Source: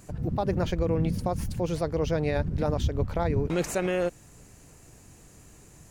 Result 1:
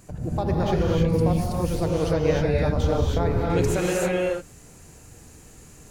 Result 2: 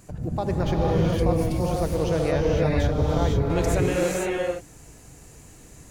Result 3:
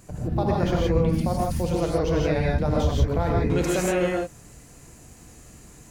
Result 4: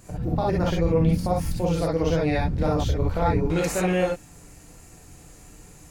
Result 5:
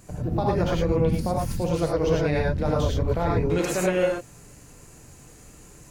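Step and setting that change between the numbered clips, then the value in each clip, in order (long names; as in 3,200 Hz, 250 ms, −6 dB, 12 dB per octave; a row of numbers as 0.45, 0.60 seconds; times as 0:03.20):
reverb whose tail is shaped and stops, gate: 340, 530, 190, 80, 130 milliseconds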